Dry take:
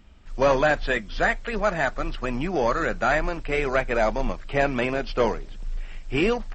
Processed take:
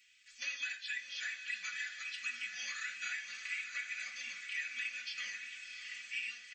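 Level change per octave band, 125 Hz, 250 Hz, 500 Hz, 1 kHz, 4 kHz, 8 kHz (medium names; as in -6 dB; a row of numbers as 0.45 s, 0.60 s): under -40 dB, under -40 dB, under -40 dB, -31.5 dB, -5.5 dB, no reading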